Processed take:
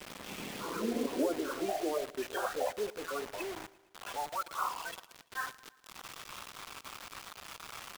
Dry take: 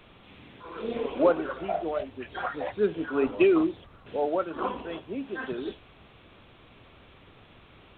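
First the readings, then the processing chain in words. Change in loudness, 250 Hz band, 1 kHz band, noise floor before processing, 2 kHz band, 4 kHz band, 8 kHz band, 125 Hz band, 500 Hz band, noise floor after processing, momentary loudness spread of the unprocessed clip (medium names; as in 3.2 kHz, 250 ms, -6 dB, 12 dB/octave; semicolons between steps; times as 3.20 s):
-9.0 dB, -9.5 dB, -3.5 dB, -55 dBFS, -3.5 dB, +2.0 dB, no reading, -9.5 dB, -10.0 dB, -63 dBFS, 15 LU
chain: coarse spectral quantiser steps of 30 dB; low-pass that closes with the level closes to 1.1 kHz, closed at -20.5 dBFS; compression 3:1, threshold -45 dBFS, peak gain reduction 20 dB; high-pass sweep 190 Hz -> 1.1 kHz, 0.53–4.45 s; word length cut 8-bit, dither none; feedback delay 114 ms, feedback 56%, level -20 dB; trim +6 dB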